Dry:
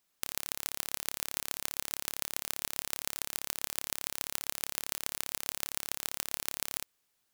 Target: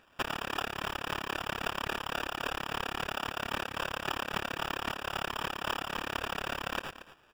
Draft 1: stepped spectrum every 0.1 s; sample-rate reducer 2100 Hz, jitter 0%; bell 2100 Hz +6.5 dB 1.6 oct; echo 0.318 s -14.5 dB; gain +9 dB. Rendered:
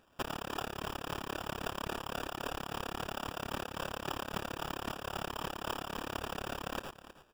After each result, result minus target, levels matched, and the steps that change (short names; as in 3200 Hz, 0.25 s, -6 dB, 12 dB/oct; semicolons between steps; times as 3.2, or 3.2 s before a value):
echo 87 ms late; 2000 Hz band -3.0 dB
change: echo 0.231 s -14.5 dB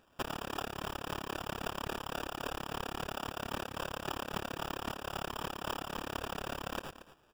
2000 Hz band -3.0 dB
change: bell 2100 Hz +16.5 dB 1.6 oct